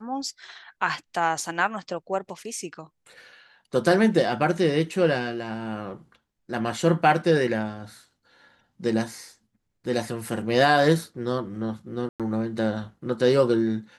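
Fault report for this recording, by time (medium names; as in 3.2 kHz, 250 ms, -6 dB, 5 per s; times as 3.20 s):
12.09–12.20 s: dropout 107 ms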